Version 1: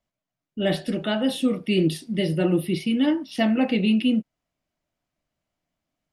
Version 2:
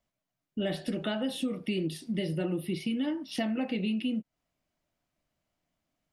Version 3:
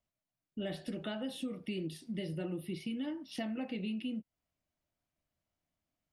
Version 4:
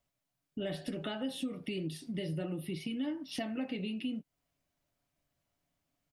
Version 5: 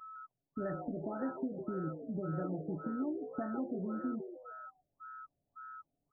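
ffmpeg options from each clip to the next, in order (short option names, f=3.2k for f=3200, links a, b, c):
-af "acompressor=threshold=-29dB:ratio=5"
-af "equalizer=f=76:t=o:w=0.82:g=6.5,volume=-7.5dB"
-af "aecho=1:1:7.1:0.34,acompressor=threshold=-44dB:ratio=1.5,volume=5dB"
-filter_complex "[0:a]aeval=exprs='val(0)+0.00562*sin(2*PI*1300*n/s)':c=same,asplit=5[a][b][c][d][e];[b]adelay=155,afreqshift=130,volume=-9dB[f];[c]adelay=310,afreqshift=260,volume=-17.4dB[g];[d]adelay=465,afreqshift=390,volume=-25.8dB[h];[e]adelay=620,afreqshift=520,volume=-34.2dB[i];[a][f][g][h][i]amix=inputs=5:normalize=0,afftfilt=real='re*lt(b*sr/1024,750*pow(1900/750,0.5+0.5*sin(2*PI*1.8*pts/sr)))':imag='im*lt(b*sr/1024,750*pow(1900/750,0.5+0.5*sin(2*PI*1.8*pts/sr)))':win_size=1024:overlap=0.75,volume=-1dB"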